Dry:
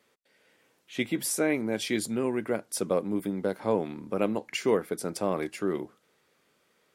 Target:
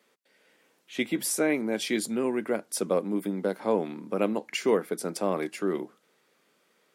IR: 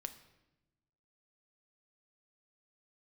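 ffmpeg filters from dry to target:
-af "highpass=f=160:w=0.5412,highpass=f=160:w=1.3066,volume=1dB"

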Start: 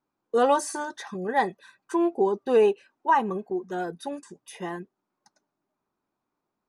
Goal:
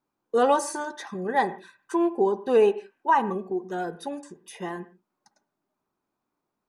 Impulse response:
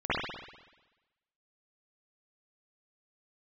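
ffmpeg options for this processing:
-filter_complex "[0:a]asplit=2[a][b];[1:a]atrim=start_sample=2205,afade=t=out:st=0.23:d=0.01,atrim=end_sample=10584,lowpass=2.4k[c];[b][c]afir=irnorm=-1:irlink=0,volume=-25.5dB[d];[a][d]amix=inputs=2:normalize=0"

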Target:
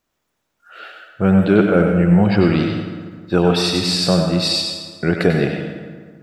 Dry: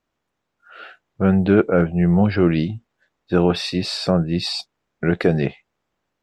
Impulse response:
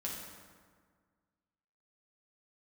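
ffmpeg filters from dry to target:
-filter_complex "[0:a]highshelf=f=5.7k:g=12,asplit=2[a][b];[1:a]atrim=start_sample=2205,lowshelf=f=270:g=-9,adelay=94[c];[b][c]afir=irnorm=-1:irlink=0,volume=-2.5dB[d];[a][d]amix=inputs=2:normalize=0,volume=1dB"

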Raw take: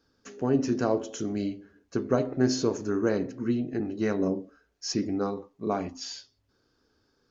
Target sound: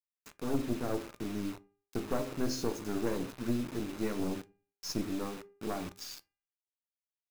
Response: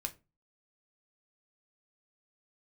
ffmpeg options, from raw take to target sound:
-filter_complex "[0:a]asettb=1/sr,asplit=3[a][b][c];[a]atrim=end=0.594[d];[b]atrim=start=0.59:end=1.55,asetpts=PTS-STARTPTS,afade=t=in:d=0.004:c=qsin,afade=t=out:st=0.956:d=0.004:c=qsin,lowpass=1.1k[e];[c]atrim=start=1.546[f];[d][e]acrossfade=d=0.004:c1=hsin:c2=qsin[g];[g][f]acrossfade=d=0.004:c1=qsin:c2=hsin,aeval=exprs='(tanh(10*val(0)+0.7)-tanh(0.7))/10':c=same,acrusher=bits=6:mix=0:aa=0.000001,bandreject=f=402:t=h:w=4,bandreject=f=804:t=h:w=4,bandreject=f=1.206k:t=h:w=4,bandreject=f=1.608k:t=h:w=4,bandreject=f=2.01k:t=h:w=4,bandreject=f=2.412k:t=h:w=4,bandreject=f=2.814k:t=h:w=4,asplit=2[h][i];[1:a]atrim=start_sample=2205[j];[i][j]afir=irnorm=-1:irlink=0,volume=-5.5dB[k];[h][k]amix=inputs=2:normalize=0,volume=-6dB"

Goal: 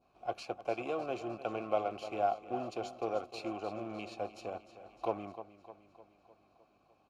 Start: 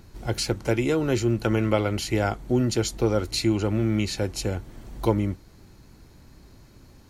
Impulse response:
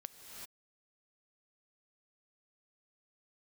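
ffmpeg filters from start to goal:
-filter_complex "[0:a]aecho=1:1:304|608|912|1216|1520|1824|2128:0.251|0.148|0.0874|0.0516|0.0304|0.018|0.0106,asplit=2[a][b];[b]acrusher=bits=3:mix=0:aa=0.5,volume=-7dB[c];[a][c]amix=inputs=2:normalize=0,adynamicequalizer=threshold=0.0126:dfrequency=1900:dqfactor=0.71:tfrequency=1900:tqfactor=0.71:attack=5:release=100:ratio=0.375:range=2:mode=cutabove:tftype=bell,aeval=exprs='val(0)+0.00398*(sin(2*PI*50*n/s)+sin(2*PI*2*50*n/s)/2+sin(2*PI*3*50*n/s)/3+sin(2*PI*4*50*n/s)/4+sin(2*PI*5*50*n/s)/5)':c=same,asplit=3[d][e][f];[d]bandpass=f=730:t=q:w=8,volume=0dB[g];[e]bandpass=f=1.09k:t=q:w=8,volume=-6dB[h];[f]bandpass=f=2.44k:t=q:w=8,volume=-9dB[i];[g][h][i]amix=inputs=3:normalize=0"

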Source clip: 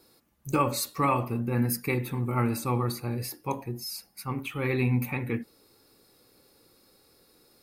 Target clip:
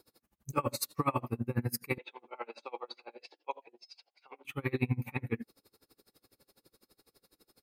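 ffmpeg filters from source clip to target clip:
-filter_complex "[0:a]asettb=1/sr,asplit=3[a][b][c];[a]atrim=end=1.984[d];[b]atrim=start=1.98:end=4.45,asetpts=PTS-STARTPTS,afade=t=in:d=0.004:c=qsin,afade=t=out:st=2.466:d=0.004:c=qsin,highpass=f=500:w=0.5412,highpass=f=500:w=1.3066,equalizer=f=1.2k:t=q:w=4:g=-8,equalizer=f=1.8k:t=q:w=4:g=-9,equalizer=f=3.2k:t=q:w=4:g=6,lowpass=f=4k:w=0.5412,lowpass=f=4k:w=1.3066[e];[c]atrim=start=4.446[f];[d][e]acrossfade=d=0.004:c1=hsin:c2=qsin[g];[g][f]acrossfade=d=0.004:c1=qsin:c2=hsin,aeval=exprs='val(0)*pow(10,-30*(0.5-0.5*cos(2*PI*12*n/s))/20)':c=same"

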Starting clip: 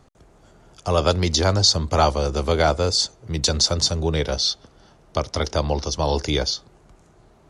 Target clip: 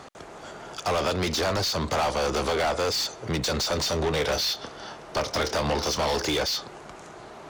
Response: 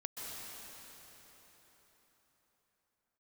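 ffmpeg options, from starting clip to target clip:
-filter_complex "[0:a]acompressor=threshold=-22dB:ratio=6,asplit=2[a][b];[b]highpass=f=720:p=1,volume=29dB,asoftclip=type=tanh:threshold=-12dB[c];[a][c]amix=inputs=2:normalize=0,lowpass=f=4k:p=1,volume=-6dB,asettb=1/sr,asplit=3[d][e][f];[d]atrim=end=3.684[g];[e]atrim=start=3.68:end=6.11,asetpts=PTS-STARTPTS,afade=t=in:d=0.004:c=qsin,afade=t=out:st=2.426:d=0.004:c=qsin,asplit=2[h][i];[i]adelay=27,volume=-11.5dB[j];[h][j]amix=inputs=2:normalize=0,atrim=end_sample=107163[k];[f]atrim=start=6.106[l];[g][k]acrossfade=d=0.004:c1=hsin:c2=qsin[m];[m][l]acrossfade=d=0.004:c1=qsin:c2=hsin,volume=-5.5dB"

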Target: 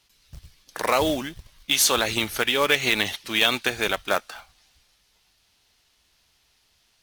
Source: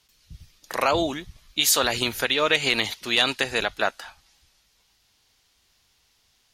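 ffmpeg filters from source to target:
-af "acrusher=bits=3:mode=log:mix=0:aa=0.000001,asetrate=41013,aresample=44100"

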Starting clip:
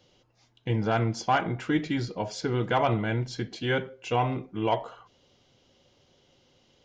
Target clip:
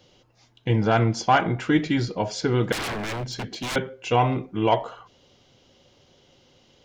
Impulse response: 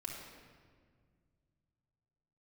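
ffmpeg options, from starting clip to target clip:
-filter_complex "[0:a]asettb=1/sr,asplit=3[a][b][c];[a]atrim=end=2.724[d];[b]atrim=start=2.72:end=3.76,asetpts=PTS-STARTPTS,afade=t=in:d=0.004:c=qsin,afade=t=out:st=1.036:d=0.004:c=qsin,aeval=exprs='0.0316*(abs(mod(val(0)/0.0316+3,4)-2)-1)':c=same[e];[c]atrim=start=3.756[f];[d][e]acrossfade=d=0.004:c1=hsin:c2=qsin[g];[g][f]acrossfade=d=0.004:c1=qsin:c2=hsin,volume=5.5dB"

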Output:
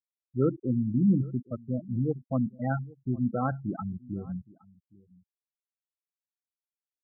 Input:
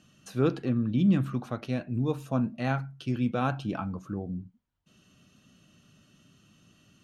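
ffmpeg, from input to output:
-filter_complex "[0:a]afftfilt=real='re*gte(hypot(re,im),0.0891)':imag='im*gte(hypot(re,im),0.0891)':win_size=1024:overlap=0.75,asplit=2[a][b];[b]adelay=816.3,volume=-23dB,highshelf=f=4k:g=-18.4[c];[a][c]amix=inputs=2:normalize=0"

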